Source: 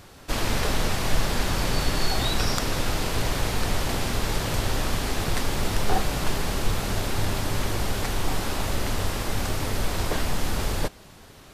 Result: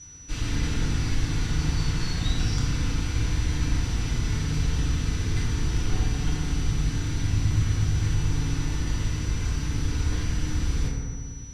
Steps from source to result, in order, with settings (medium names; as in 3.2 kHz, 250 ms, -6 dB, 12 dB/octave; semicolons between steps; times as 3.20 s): amplifier tone stack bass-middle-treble 6-0-2; whistle 5.9 kHz -52 dBFS; distance through air 76 m; FDN reverb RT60 1.9 s, low-frequency decay 1.4×, high-frequency decay 0.35×, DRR -6.5 dB; trim +7.5 dB